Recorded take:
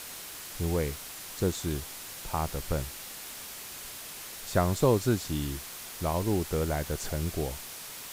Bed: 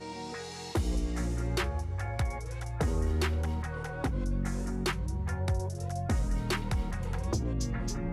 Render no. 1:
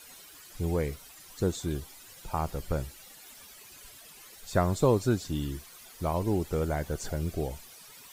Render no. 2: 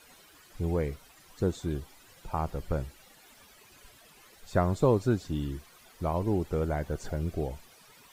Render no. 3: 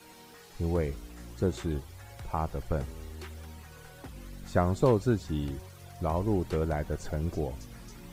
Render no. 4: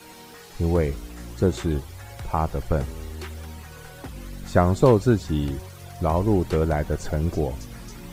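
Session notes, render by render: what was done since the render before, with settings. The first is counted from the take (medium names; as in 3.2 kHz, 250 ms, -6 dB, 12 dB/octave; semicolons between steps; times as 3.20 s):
noise reduction 13 dB, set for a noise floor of -43 dBFS
treble shelf 3.6 kHz -10 dB
add bed -14 dB
trim +7.5 dB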